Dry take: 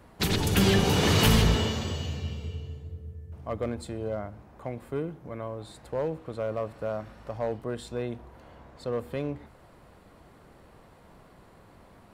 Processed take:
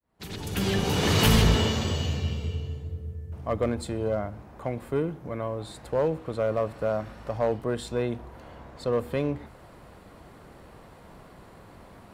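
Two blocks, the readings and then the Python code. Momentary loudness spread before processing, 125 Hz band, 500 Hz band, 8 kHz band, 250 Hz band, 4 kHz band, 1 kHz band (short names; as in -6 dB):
19 LU, +1.0 dB, +3.0 dB, -0.5 dB, +0.5 dB, 0.0 dB, +1.5 dB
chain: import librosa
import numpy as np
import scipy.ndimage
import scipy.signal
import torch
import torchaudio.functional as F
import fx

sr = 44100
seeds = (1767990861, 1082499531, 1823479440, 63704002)

y = fx.fade_in_head(x, sr, length_s=2.07)
y = fx.cheby_harmonics(y, sr, harmonics=(8,), levels_db=(-35,), full_scale_db=-13.5)
y = y * 10.0 ** (5.0 / 20.0)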